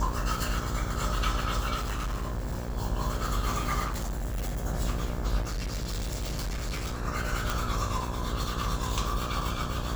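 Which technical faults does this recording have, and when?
buzz 60 Hz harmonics 29 -35 dBFS
1.74–2.77 s: clipped -28 dBFS
3.86–4.66 s: clipped -28.5 dBFS
5.41–7.00 s: clipped -29 dBFS
7.50 s: pop

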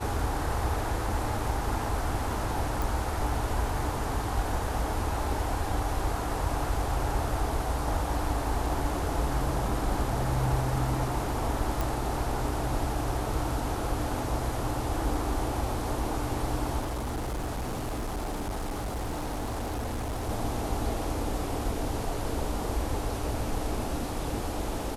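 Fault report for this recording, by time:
2.82 s: pop
11.81 s: pop
16.80–20.30 s: clipped -29 dBFS

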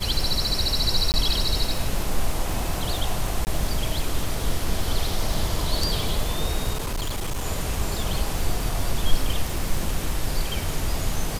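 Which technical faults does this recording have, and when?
crackle 80 per s -26 dBFS
1.12–1.14 s: dropout 19 ms
3.45–3.47 s: dropout 19 ms
6.73–7.46 s: clipped -23 dBFS

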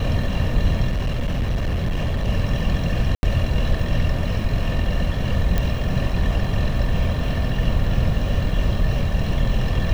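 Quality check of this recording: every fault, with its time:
0.88–2.29 s: clipped -18 dBFS
3.15–3.23 s: dropout 81 ms
5.58 s: pop -9 dBFS

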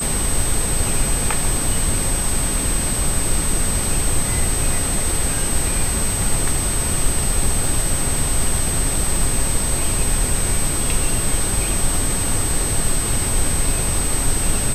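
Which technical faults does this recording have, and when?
crackle 12 per s
whine 8.2 kHz -22 dBFS

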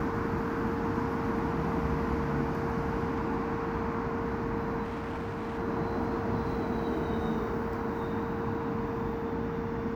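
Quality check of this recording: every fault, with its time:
whine 460 Hz -35 dBFS
4.83–5.59 s: clipped -32 dBFS

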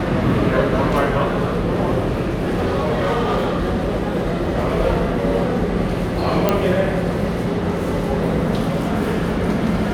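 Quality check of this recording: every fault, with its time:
2.25–4.27 s: clipped -15 dBFS
6.49 s: pop -3 dBFS

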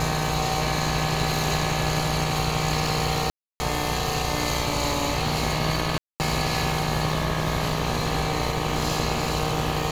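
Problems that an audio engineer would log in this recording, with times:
buzz 60 Hz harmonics 21 -30 dBFS
crackle 20 per s
3.30–3.60 s: dropout 300 ms
5.98–6.20 s: dropout 219 ms

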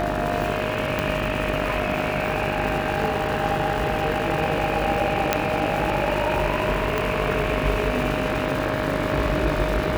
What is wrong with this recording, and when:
buzz 50 Hz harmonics 37 -29 dBFS
crackle 490 per s -30 dBFS
whine 620 Hz -28 dBFS
0.99 s: pop
5.33 s: pop -3 dBFS
6.98 s: pop

